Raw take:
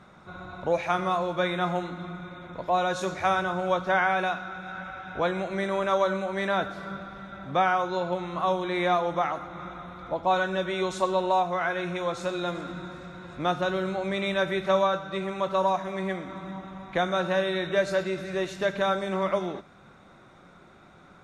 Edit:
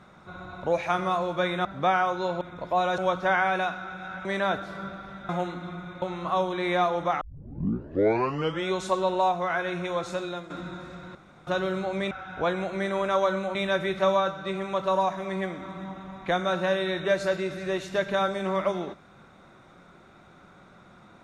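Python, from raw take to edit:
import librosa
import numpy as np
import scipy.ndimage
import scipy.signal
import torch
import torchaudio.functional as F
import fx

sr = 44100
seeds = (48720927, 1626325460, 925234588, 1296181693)

y = fx.edit(x, sr, fx.swap(start_s=1.65, length_s=0.73, other_s=7.37, other_length_s=0.76),
    fx.cut(start_s=2.95, length_s=0.67),
    fx.move(start_s=4.89, length_s=1.44, to_s=14.22),
    fx.tape_start(start_s=9.32, length_s=1.49),
    fx.fade_out_to(start_s=12.1, length_s=0.51, curve='qsin', floor_db=-12.5),
    fx.room_tone_fill(start_s=13.26, length_s=0.32), tone=tone)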